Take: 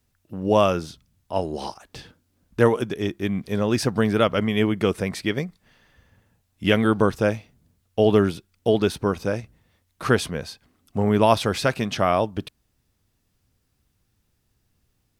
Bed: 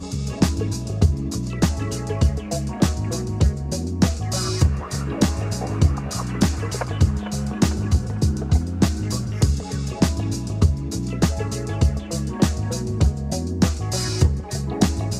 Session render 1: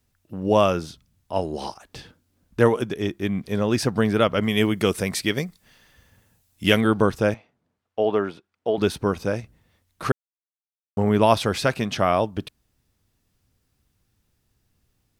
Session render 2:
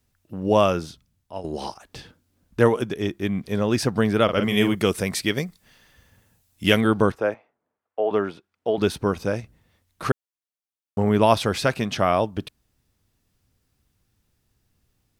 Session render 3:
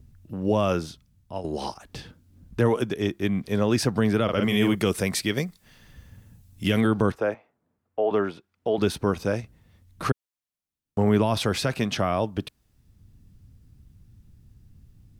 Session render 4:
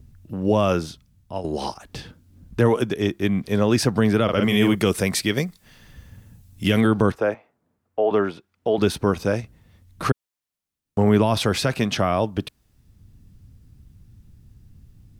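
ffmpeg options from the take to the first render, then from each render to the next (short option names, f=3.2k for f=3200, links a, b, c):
-filter_complex "[0:a]asettb=1/sr,asplit=3[a][b][c];[a]atrim=end=4.434[d];[b]atrim=start=4.43:end=6.81,asetpts=PTS-STARTPTS,afade=t=in:d=0.004:c=qsin,afade=t=out:st=2.376:d=0.004:c=qsin,highshelf=f=4k:g=11[e];[c]atrim=start=6.806[f];[d][e]acrossfade=d=0.004:c1=hsin:c2=qsin[g];[g][f]acrossfade=d=0.004:c1=qsin:c2=hsin,asettb=1/sr,asplit=3[h][i][j];[h]atrim=end=7.344[k];[i]atrim=start=7.34:end=8.78,asetpts=PTS-STARTPTS,afade=t=in:d=0.004:c=qsin,afade=t=out:st=1.436:d=0.004:c=qsin,bandpass=f=910:t=q:w=0.71[l];[j]atrim=start=8.776[m];[k][l]acrossfade=d=0.004:c1=hsin:c2=qsin[n];[n][m]acrossfade=d=0.004:c1=qsin:c2=hsin,asplit=3[o][p][q];[o]atrim=end=10.12,asetpts=PTS-STARTPTS,afade=t=out:st=10.116:d=0.004:c=hsin[r];[p]atrim=start=10.12:end=10.97,asetpts=PTS-STARTPTS,volume=0[s];[q]atrim=start=10.97,asetpts=PTS-STARTPTS,afade=t=in:d=0.004:c=hsin[t];[r][s][t]concat=n=3:v=0:a=1"
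-filter_complex "[0:a]asettb=1/sr,asplit=3[a][b][c];[a]atrim=end=4.244[d];[b]atrim=start=4.24:end=4.75,asetpts=PTS-STARTPTS,afade=t=in:d=0.004:c=qsin,afade=t=out:st=0.506:d=0.004:c=qsin,asplit=2[e][f];[f]adelay=43,volume=-7dB[g];[e][g]amix=inputs=2:normalize=0,atrim=end_sample=22491[h];[c]atrim=start=4.746[i];[d][h]acrossfade=d=0.004:c1=hsin:c2=qsin[j];[j][i]acrossfade=d=0.004:c1=qsin:c2=hsin,asettb=1/sr,asplit=3[k][l][m];[k]atrim=end=7.124[n];[l]atrim=start=7.12:end=8.11,asetpts=PTS-STARTPTS,afade=t=in:d=0.004:c=qsin,afade=t=out:st=0.986:d=0.004:c=qsin,acrossover=split=330 2100:gain=0.158 1 0.178[o][p][q];[o][p][q]amix=inputs=3:normalize=0[r];[m]atrim=start=8.106[s];[n][r]acrossfade=d=0.004:c1=hsin:c2=qsin[t];[t][s]acrossfade=d=0.004:c1=qsin:c2=hsin,asplit=2[u][v];[u]atrim=end=1.44,asetpts=PTS-STARTPTS,afade=t=out:st=0.83:d=0.61:silence=0.266073[w];[v]atrim=start=1.44,asetpts=PTS-STARTPTS,afade=t=in:d=0.004:c=hsin:silence=0.266073[x];[w][x]concat=n=2:v=0:a=1"
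-filter_complex "[0:a]acrossover=split=240[a][b];[a]acompressor=mode=upward:threshold=-35dB:ratio=2.5[c];[b]alimiter=limit=-15dB:level=0:latency=1:release=36[d];[c][d]amix=inputs=2:normalize=0"
-af "volume=3.5dB"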